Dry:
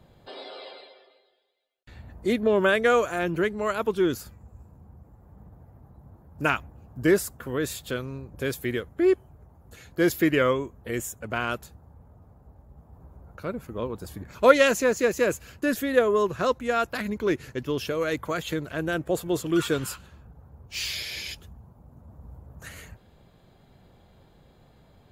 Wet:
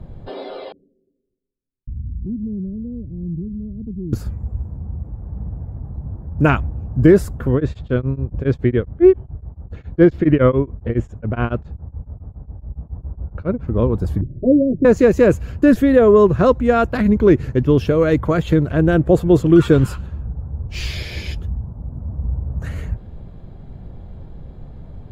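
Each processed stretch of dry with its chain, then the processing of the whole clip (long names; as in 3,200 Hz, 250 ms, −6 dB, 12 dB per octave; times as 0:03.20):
0:00.72–0:04.13: inverse Chebyshev low-pass filter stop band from 830 Hz, stop band 60 dB + downward compressor 2 to 1, threshold −49 dBFS
0:07.54–0:13.68: high-frequency loss of the air 160 metres + tremolo along a rectified sine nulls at 7.2 Hz
0:14.21–0:14.85: Butterworth low-pass 500 Hz 48 dB per octave + phaser with its sweep stopped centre 310 Hz, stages 8 + dynamic equaliser 130 Hz, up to +4 dB, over −45 dBFS, Q 1.2
whole clip: spectral tilt −4 dB per octave; boost into a limiter +8.5 dB; level −1 dB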